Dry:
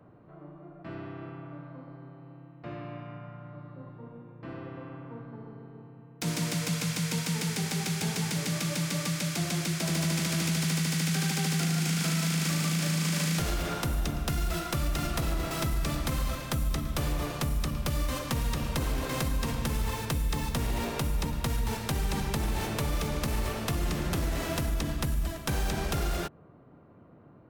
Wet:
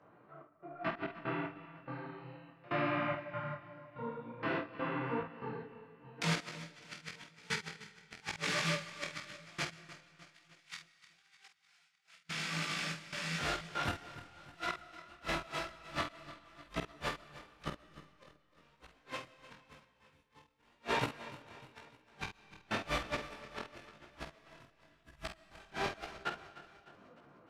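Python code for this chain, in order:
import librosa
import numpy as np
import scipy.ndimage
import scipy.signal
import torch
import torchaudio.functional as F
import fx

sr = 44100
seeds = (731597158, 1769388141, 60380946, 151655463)

y = fx.highpass(x, sr, hz=1400.0, slope=6, at=(9.74, 12.21))
y = fx.noise_reduce_blind(y, sr, reduce_db=13)
y = scipy.signal.sosfilt(scipy.signal.butter(2, 2200.0, 'lowpass', fs=sr, output='sos'), y)
y = fx.tilt_eq(y, sr, slope=4.5)
y = fx.over_compress(y, sr, threshold_db=-40.0, ratio=-0.5)
y = fx.gate_flip(y, sr, shuts_db=-30.0, range_db=-40)
y = fx.step_gate(y, sr, bpm=72, pattern='xx.xx.x..x', floor_db=-24.0, edge_ms=4.5)
y = fx.doubler(y, sr, ms=48.0, db=-8.0)
y = fx.echo_feedback(y, sr, ms=303, feedback_pct=52, wet_db=-16)
y = fx.rev_freeverb(y, sr, rt60_s=2.5, hf_ratio=0.85, predelay_ms=90, drr_db=17.0)
y = fx.detune_double(y, sr, cents=33)
y = y * 10.0 ** (12.5 / 20.0)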